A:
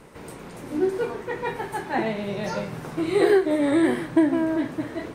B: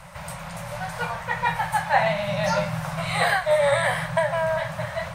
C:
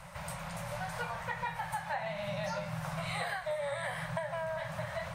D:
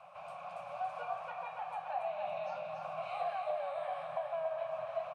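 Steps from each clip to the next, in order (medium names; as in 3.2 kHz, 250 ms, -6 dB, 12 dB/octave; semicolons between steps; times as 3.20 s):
Chebyshev band-stop 180–560 Hz, order 4; trim +8 dB
compression 6:1, threshold -28 dBFS, peak gain reduction 13.5 dB; trim -5.5 dB
vowel filter a; on a send: feedback delay 281 ms, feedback 52%, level -5 dB; on the sum: trim +5.5 dB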